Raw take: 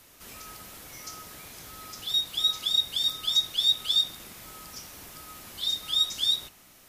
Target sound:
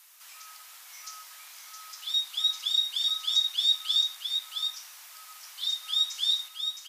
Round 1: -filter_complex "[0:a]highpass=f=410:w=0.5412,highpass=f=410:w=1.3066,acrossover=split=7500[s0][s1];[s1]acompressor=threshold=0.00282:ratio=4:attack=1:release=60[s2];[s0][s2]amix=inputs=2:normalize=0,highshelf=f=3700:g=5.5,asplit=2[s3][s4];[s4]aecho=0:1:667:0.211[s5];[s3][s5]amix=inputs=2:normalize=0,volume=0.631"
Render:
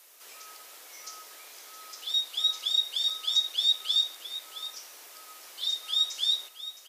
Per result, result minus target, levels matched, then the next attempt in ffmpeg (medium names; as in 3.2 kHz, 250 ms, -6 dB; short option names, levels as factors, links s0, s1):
500 Hz band +14.0 dB; echo-to-direct -7.5 dB
-filter_complex "[0:a]highpass=f=880:w=0.5412,highpass=f=880:w=1.3066,acrossover=split=7500[s0][s1];[s1]acompressor=threshold=0.00282:ratio=4:attack=1:release=60[s2];[s0][s2]amix=inputs=2:normalize=0,highshelf=f=3700:g=5.5,asplit=2[s3][s4];[s4]aecho=0:1:667:0.211[s5];[s3][s5]amix=inputs=2:normalize=0,volume=0.631"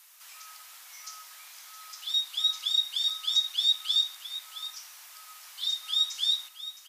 echo-to-direct -7.5 dB
-filter_complex "[0:a]highpass=f=880:w=0.5412,highpass=f=880:w=1.3066,acrossover=split=7500[s0][s1];[s1]acompressor=threshold=0.00282:ratio=4:attack=1:release=60[s2];[s0][s2]amix=inputs=2:normalize=0,highshelf=f=3700:g=5.5,asplit=2[s3][s4];[s4]aecho=0:1:667:0.501[s5];[s3][s5]amix=inputs=2:normalize=0,volume=0.631"